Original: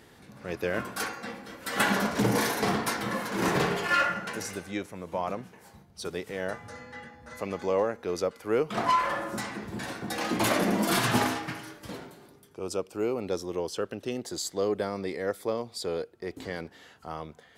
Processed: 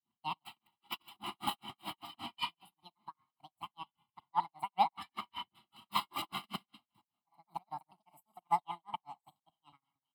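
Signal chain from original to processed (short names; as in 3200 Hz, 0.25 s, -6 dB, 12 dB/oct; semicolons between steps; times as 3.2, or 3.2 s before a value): slices in reverse order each 0.196 s, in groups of 2; HPF 50 Hz; reverb RT60 1.1 s, pre-delay 48 ms, DRR 9.5 dB; speed mistake 45 rpm record played at 78 rpm; low shelf 160 Hz +4 dB; comb 1 ms, depth 78%; thinning echo 0.207 s, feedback 57%, level -22.5 dB; grains 0.211 s, grains 5.1/s, spray 12 ms, pitch spread up and down by 0 st; bell 440 Hz -2.5 dB 0.77 oct; fixed phaser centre 1800 Hz, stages 6; upward expander 2.5:1, over -46 dBFS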